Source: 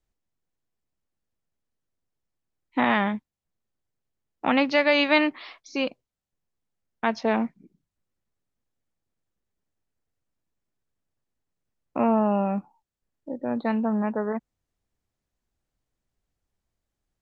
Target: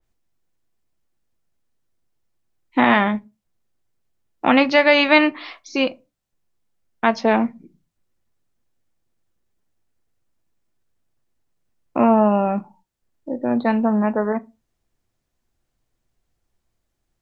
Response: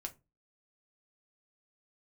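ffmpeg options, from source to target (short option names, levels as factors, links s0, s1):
-filter_complex "[0:a]asplit=2[s0][s1];[1:a]atrim=start_sample=2205,afade=t=out:st=0.28:d=0.01,atrim=end_sample=12789[s2];[s1][s2]afir=irnorm=-1:irlink=0,volume=1.06[s3];[s0][s3]amix=inputs=2:normalize=0,adynamicequalizer=threshold=0.0282:dfrequency=2800:dqfactor=0.7:tfrequency=2800:tqfactor=0.7:attack=5:release=100:ratio=0.375:range=1.5:mode=cutabove:tftype=highshelf,volume=1.26"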